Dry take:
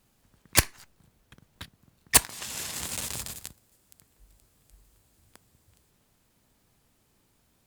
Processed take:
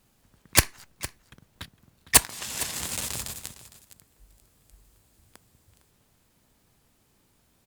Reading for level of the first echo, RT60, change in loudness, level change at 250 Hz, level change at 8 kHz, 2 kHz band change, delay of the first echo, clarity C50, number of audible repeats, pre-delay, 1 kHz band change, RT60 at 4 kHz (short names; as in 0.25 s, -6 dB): -16.0 dB, none, +1.5 dB, +2.0 dB, +2.0 dB, +2.0 dB, 0.458 s, none, 1, none, +2.0 dB, none